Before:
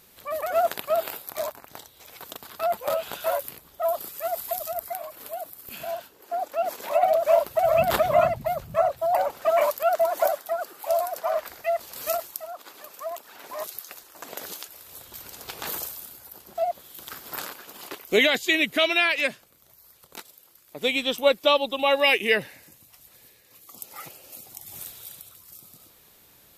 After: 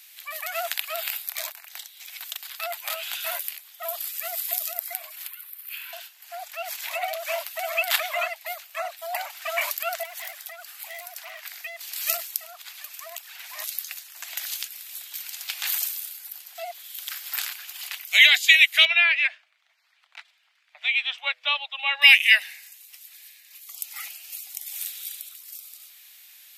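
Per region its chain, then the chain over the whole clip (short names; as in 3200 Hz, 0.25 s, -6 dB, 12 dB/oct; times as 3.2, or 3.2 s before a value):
5.27–5.93 brick-wall FIR high-pass 860 Hz + bell 6500 Hz -13.5 dB 1.2 oct
10.03–11.81 hard clip -24 dBFS + compressor 2.5:1, threshold -37 dBFS
18.85–22.02 LPF 2100 Hz + de-hum 125.2 Hz, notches 5
whole clip: steep high-pass 670 Hz 72 dB/oct; resonant high shelf 1500 Hz +12 dB, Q 1.5; gain -6 dB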